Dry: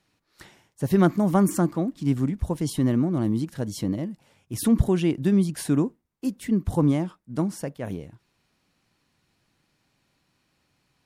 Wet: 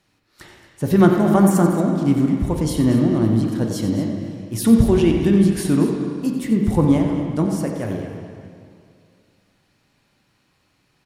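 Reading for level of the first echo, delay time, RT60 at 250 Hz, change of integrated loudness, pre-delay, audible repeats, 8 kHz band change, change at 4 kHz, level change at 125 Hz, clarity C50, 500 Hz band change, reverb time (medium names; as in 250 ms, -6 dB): -10.0 dB, 91 ms, 2.3 s, +6.5 dB, 4 ms, 2, +4.5 dB, +6.0 dB, +6.0 dB, 2.0 dB, +7.5 dB, 2.3 s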